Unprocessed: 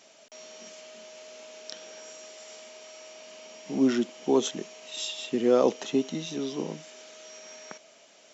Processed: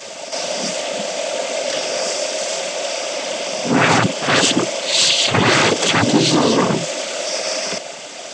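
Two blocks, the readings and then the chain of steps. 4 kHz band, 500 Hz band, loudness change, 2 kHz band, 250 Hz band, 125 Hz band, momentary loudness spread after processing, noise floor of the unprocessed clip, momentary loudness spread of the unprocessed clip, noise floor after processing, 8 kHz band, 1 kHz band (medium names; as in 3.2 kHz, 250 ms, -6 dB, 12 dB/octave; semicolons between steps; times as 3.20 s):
+21.5 dB, +10.0 dB, +10.5 dB, +25.0 dB, +9.0 dB, +21.0 dB, 9 LU, -56 dBFS, 21 LU, -32 dBFS, no reading, +19.5 dB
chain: sine folder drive 20 dB, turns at -10 dBFS; noise-vocoded speech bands 16; reverse echo 61 ms -9 dB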